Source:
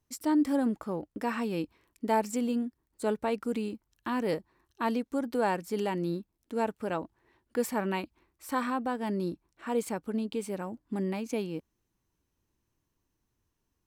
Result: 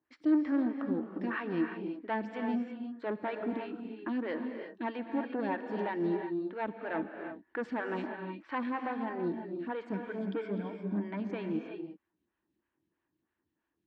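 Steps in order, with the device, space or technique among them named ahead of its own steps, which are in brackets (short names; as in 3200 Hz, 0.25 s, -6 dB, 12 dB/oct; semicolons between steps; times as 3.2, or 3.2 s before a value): 9.91–11.2 ripple EQ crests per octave 1.7, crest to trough 13 dB; vibe pedal into a guitar amplifier (photocell phaser 3.1 Hz; tube stage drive 27 dB, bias 0.3; speaker cabinet 100–3500 Hz, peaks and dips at 120 Hz -7 dB, 320 Hz +8 dB, 450 Hz -4 dB, 1700 Hz +9 dB); non-linear reverb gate 0.38 s rising, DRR 5 dB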